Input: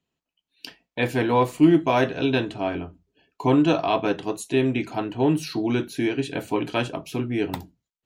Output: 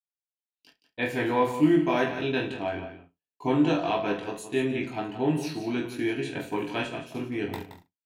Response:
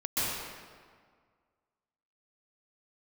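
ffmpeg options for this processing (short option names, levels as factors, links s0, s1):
-filter_complex "[0:a]adynamicequalizer=threshold=0.00631:dfrequency=1900:dqfactor=2.7:tfrequency=1900:tqfactor=2.7:attack=5:release=100:ratio=0.375:range=2.5:mode=boostabove:tftype=bell,asplit=2[s0][s1];[s1]aecho=0:1:20|44|72.8|107.4|148.8:0.631|0.398|0.251|0.158|0.1[s2];[s0][s2]amix=inputs=2:normalize=0,agate=range=0.0224:threshold=0.0355:ratio=3:detection=peak,asplit=2[s3][s4];[s4]aecho=0:1:172:0.282[s5];[s3][s5]amix=inputs=2:normalize=0,volume=0.422"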